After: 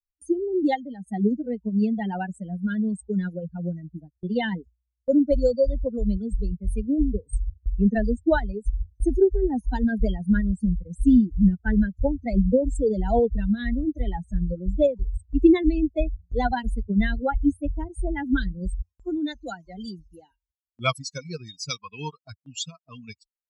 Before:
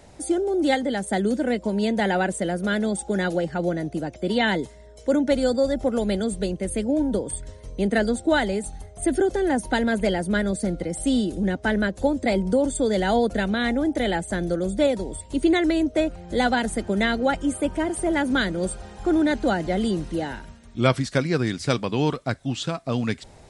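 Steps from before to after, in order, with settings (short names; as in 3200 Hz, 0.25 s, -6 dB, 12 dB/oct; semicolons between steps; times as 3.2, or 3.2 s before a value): per-bin expansion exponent 3; gate with hold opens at -44 dBFS; tilt -3.5 dB/oct, from 18.82 s +2.5 dB/oct; gain +2 dB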